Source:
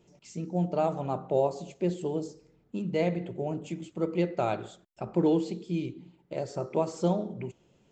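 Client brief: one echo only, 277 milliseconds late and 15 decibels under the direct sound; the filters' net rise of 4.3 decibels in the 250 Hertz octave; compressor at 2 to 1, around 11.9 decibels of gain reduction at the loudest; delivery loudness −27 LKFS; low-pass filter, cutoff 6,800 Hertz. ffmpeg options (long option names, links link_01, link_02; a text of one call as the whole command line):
ffmpeg -i in.wav -af "lowpass=6800,equalizer=frequency=250:width_type=o:gain=7,acompressor=threshold=-39dB:ratio=2,aecho=1:1:277:0.178,volume=10.5dB" out.wav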